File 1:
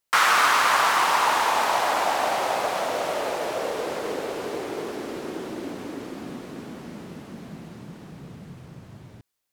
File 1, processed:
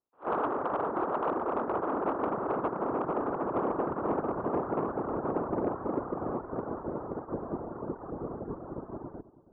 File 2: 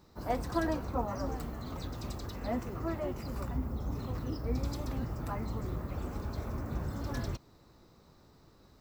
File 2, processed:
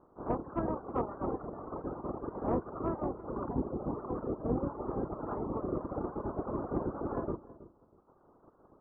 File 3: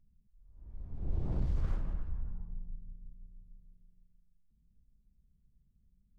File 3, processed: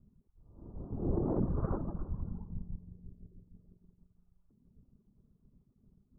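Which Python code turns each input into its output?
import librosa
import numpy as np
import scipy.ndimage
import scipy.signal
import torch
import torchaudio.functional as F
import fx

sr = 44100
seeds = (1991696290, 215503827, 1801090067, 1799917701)

p1 = fx.spec_clip(x, sr, under_db=17)
p2 = fx.dereverb_blind(p1, sr, rt60_s=1.6)
p3 = scipy.signal.sosfilt(scipy.signal.butter(8, 1300.0, 'lowpass', fs=sr, output='sos'), p2)
p4 = fx.peak_eq(p3, sr, hz=350.0, db=7.5, octaves=1.3)
p5 = fx.rider(p4, sr, range_db=4, speed_s=2.0)
p6 = 10.0 ** (-18.5 / 20.0) * np.tanh(p5 / 10.0 ** (-18.5 / 20.0))
p7 = p6 + fx.echo_filtered(p6, sr, ms=323, feedback_pct=25, hz=1000.0, wet_db=-16.5, dry=0)
y = fx.attack_slew(p7, sr, db_per_s=340.0)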